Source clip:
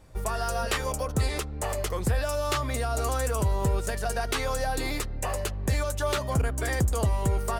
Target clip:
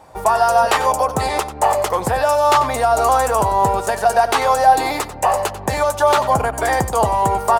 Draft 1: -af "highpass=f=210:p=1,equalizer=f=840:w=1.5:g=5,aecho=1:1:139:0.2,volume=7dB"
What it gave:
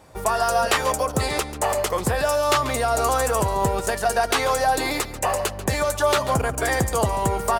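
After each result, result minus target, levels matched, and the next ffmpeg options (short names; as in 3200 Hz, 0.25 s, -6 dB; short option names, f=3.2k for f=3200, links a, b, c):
echo 46 ms late; 1000 Hz band -3.0 dB
-af "highpass=f=210:p=1,equalizer=f=840:w=1.5:g=5,aecho=1:1:93:0.2,volume=7dB"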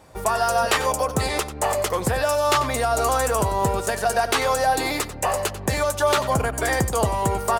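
1000 Hz band -3.0 dB
-af "highpass=f=210:p=1,equalizer=f=840:w=1.5:g=15.5,aecho=1:1:93:0.2,volume=7dB"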